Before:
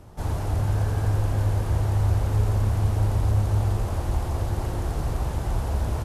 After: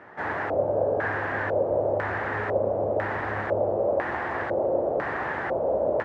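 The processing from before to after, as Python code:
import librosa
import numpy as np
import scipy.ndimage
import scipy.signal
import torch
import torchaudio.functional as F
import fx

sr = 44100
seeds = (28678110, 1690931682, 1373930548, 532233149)

y = fx.filter_lfo_lowpass(x, sr, shape='square', hz=1.0, low_hz=570.0, high_hz=1800.0, q=6.5)
y = scipy.signal.sosfilt(scipy.signal.butter(2, 350.0, 'highpass', fs=sr, output='sos'), y)
y = F.gain(torch.from_numpy(y), 4.5).numpy()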